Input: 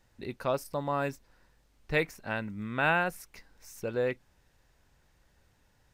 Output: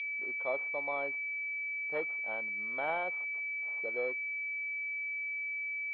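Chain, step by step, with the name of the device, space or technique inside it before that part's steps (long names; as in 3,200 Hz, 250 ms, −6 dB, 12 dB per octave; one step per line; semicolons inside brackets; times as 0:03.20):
toy sound module (linearly interpolated sample-rate reduction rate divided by 8×; switching amplifier with a slow clock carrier 2,300 Hz; loudspeaker in its box 640–4,400 Hz, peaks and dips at 1,000 Hz −4 dB, 1,500 Hz −5 dB, 3,300 Hz +10 dB)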